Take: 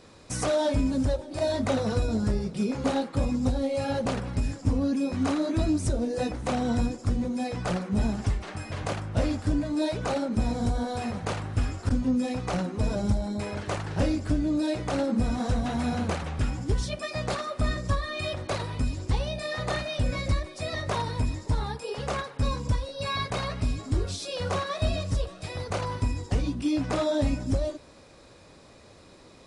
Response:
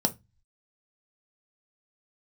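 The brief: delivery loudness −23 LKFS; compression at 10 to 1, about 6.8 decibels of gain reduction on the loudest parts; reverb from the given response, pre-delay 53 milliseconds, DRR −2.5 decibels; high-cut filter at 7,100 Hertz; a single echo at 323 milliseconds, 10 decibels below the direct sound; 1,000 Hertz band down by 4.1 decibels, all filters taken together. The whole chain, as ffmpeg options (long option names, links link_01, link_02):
-filter_complex "[0:a]lowpass=7100,equalizer=frequency=1000:width_type=o:gain=-5.5,acompressor=threshold=-27dB:ratio=10,aecho=1:1:323:0.316,asplit=2[link_01][link_02];[1:a]atrim=start_sample=2205,adelay=53[link_03];[link_02][link_03]afir=irnorm=-1:irlink=0,volume=-6dB[link_04];[link_01][link_04]amix=inputs=2:normalize=0,volume=0.5dB"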